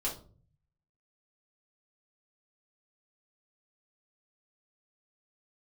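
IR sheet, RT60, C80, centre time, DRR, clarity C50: 0.45 s, 15.5 dB, 23 ms, -6.5 dB, 9.0 dB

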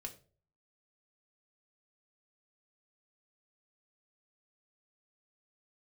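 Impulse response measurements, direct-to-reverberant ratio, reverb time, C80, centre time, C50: 2.5 dB, 0.40 s, 18.0 dB, 9 ms, 13.5 dB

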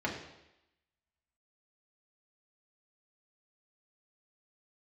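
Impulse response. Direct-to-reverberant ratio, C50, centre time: -3.0 dB, 6.0 dB, 30 ms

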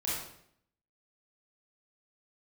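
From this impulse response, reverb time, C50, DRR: 0.70 s, -1.0 dB, -8.0 dB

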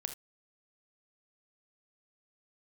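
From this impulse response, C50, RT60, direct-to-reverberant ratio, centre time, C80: 10.0 dB, not exponential, 7.5 dB, 9 ms, 17.5 dB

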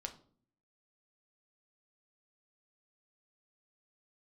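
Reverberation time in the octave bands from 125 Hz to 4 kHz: 0.75, 0.80, 0.55, 0.45, 0.35, 0.35 s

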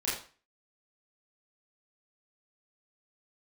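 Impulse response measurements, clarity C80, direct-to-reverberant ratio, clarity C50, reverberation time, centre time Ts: 8.5 dB, -9.0 dB, 3.5 dB, 0.40 s, 46 ms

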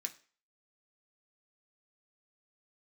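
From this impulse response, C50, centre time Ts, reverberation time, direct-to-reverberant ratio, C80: 16.5 dB, 6 ms, 0.40 s, 3.0 dB, 21.0 dB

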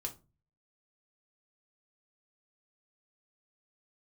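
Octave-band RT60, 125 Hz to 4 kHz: 0.65, 0.45, 0.35, 0.25, 0.20, 0.20 s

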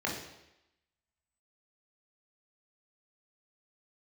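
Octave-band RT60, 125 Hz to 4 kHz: 0.80, 0.85, 0.90, 0.90, 0.90, 0.90 s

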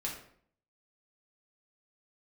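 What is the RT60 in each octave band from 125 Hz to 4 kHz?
0.70, 0.70, 0.60, 0.55, 0.50, 0.45 s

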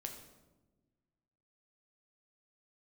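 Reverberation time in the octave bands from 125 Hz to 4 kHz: 2.0, 1.8, 1.4, 1.0, 0.75, 0.70 s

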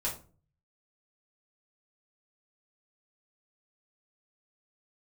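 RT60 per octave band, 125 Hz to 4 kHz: 0.80, 0.55, 0.45, 0.35, 0.30, 0.25 s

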